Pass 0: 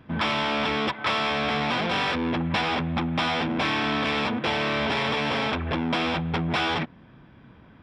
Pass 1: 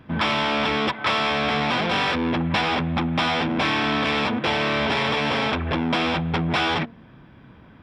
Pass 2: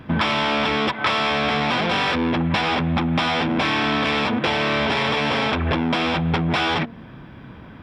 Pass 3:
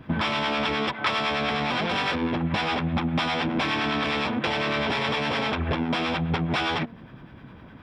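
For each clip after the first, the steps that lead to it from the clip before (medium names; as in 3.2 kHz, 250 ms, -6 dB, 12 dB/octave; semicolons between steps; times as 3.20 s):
de-hum 228.2 Hz, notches 3; trim +3 dB
compression, threshold -25 dBFS, peak gain reduction 7.5 dB; trim +7.5 dB
harmonic tremolo 9.8 Hz, depth 50%, crossover 760 Hz; trim -2.5 dB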